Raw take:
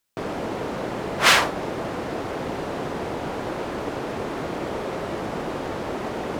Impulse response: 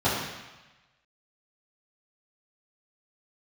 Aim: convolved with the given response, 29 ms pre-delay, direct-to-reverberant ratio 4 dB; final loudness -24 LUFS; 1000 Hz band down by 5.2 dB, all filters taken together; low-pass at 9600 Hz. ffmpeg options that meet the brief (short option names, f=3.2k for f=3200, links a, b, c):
-filter_complex "[0:a]lowpass=9.6k,equalizer=f=1k:t=o:g=-7,asplit=2[a][b];[1:a]atrim=start_sample=2205,adelay=29[c];[b][c]afir=irnorm=-1:irlink=0,volume=-19.5dB[d];[a][d]amix=inputs=2:normalize=0,volume=2dB"